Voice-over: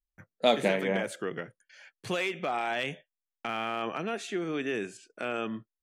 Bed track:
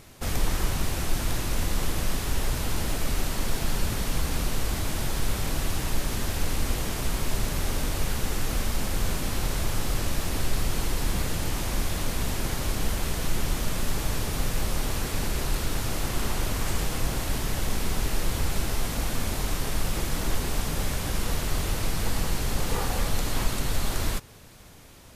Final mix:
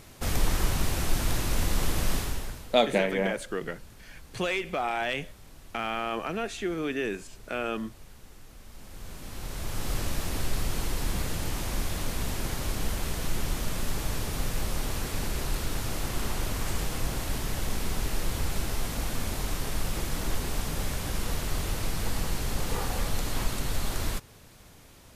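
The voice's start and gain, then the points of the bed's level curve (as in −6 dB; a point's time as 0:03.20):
2.30 s, +1.5 dB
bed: 0:02.18 0 dB
0:02.85 −22.5 dB
0:08.58 −22.5 dB
0:09.92 −3 dB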